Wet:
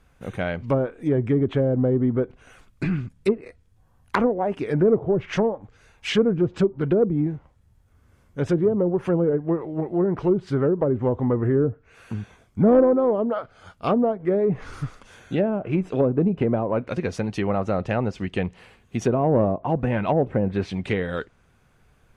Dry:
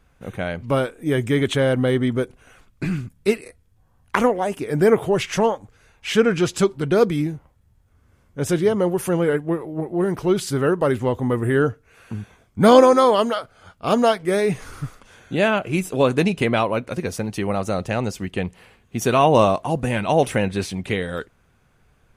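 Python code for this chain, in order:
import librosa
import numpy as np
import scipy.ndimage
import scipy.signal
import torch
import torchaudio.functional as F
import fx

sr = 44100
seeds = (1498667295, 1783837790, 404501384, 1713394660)

y = fx.env_lowpass_down(x, sr, base_hz=490.0, full_db=-14.5)
y = 10.0 ** (-7.0 / 20.0) * np.tanh(y / 10.0 ** (-7.0 / 20.0))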